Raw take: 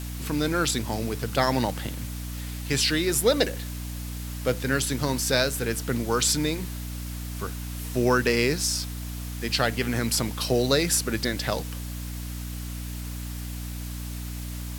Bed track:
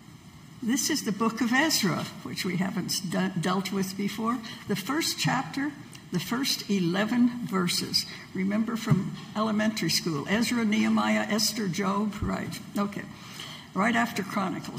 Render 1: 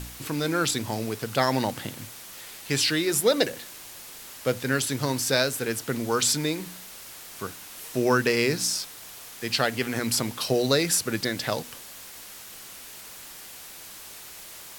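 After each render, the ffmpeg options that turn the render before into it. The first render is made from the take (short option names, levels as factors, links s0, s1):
-af "bandreject=f=60:t=h:w=4,bandreject=f=120:t=h:w=4,bandreject=f=180:t=h:w=4,bandreject=f=240:t=h:w=4,bandreject=f=300:t=h:w=4"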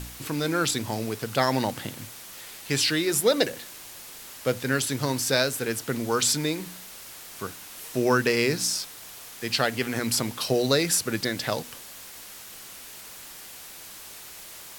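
-af anull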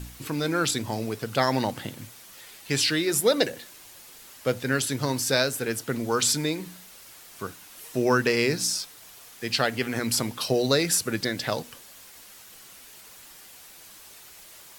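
-af "afftdn=nr=6:nf=-44"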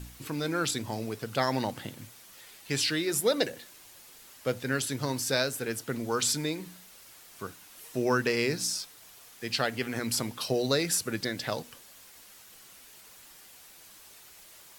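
-af "volume=0.596"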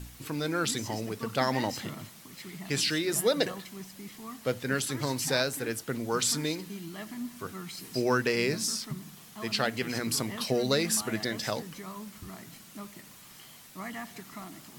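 -filter_complex "[1:a]volume=0.178[s0];[0:a][s0]amix=inputs=2:normalize=0"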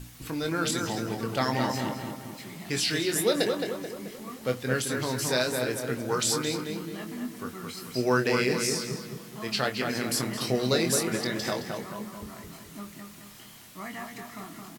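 -filter_complex "[0:a]asplit=2[s0][s1];[s1]adelay=24,volume=0.447[s2];[s0][s2]amix=inputs=2:normalize=0,asplit=2[s3][s4];[s4]adelay=217,lowpass=f=2500:p=1,volume=0.631,asplit=2[s5][s6];[s6]adelay=217,lowpass=f=2500:p=1,volume=0.5,asplit=2[s7][s8];[s8]adelay=217,lowpass=f=2500:p=1,volume=0.5,asplit=2[s9][s10];[s10]adelay=217,lowpass=f=2500:p=1,volume=0.5,asplit=2[s11][s12];[s12]adelay=217,lowpass=f=2500:p=1,volume=0.5,asplit=2[s13][s14];[s14]adelay=217,lowpass=f=2500:p=1,volume=0.5[s15];[s5][s7][s9][s11][s13][s15]amix=inputs=6:normalize=0[s16];[s3][s16]amix=inputs=2:normalize=0"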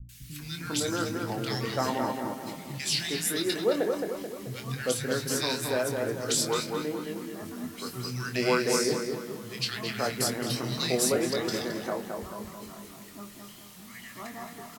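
-filter_complex "[0:a]acrossover=split=190|1700[s0][s1][s2];[s2]adelay=90[s3];[s1]adelay=400[s4];[s0][s4][s3]amix=inputs=3:normalize=0"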